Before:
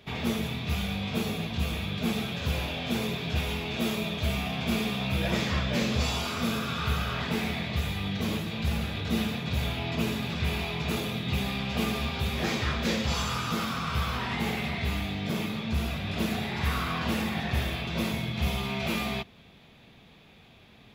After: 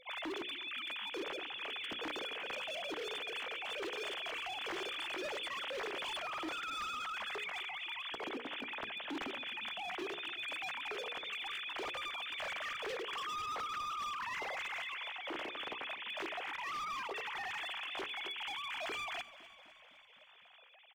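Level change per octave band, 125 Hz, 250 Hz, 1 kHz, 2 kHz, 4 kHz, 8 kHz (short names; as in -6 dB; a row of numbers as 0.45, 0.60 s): -37.5, -20.5, -6.0, -6.0, -7.0, -13.5 dB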